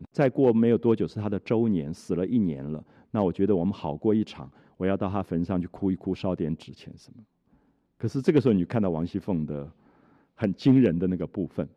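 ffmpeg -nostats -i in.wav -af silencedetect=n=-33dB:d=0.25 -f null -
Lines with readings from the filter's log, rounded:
silence_start: 2.79
silence_end: 3.14 | silence_duration: 0.35
silence_start: 4.45
silence_end: 4.80 | silence_duration: 0.36
silence_start: 6.91
silence_end: 8.03 | silence_duration: 1.12
silence_start: 9.65
silence_end: 10.41 | silence_duration: 0.76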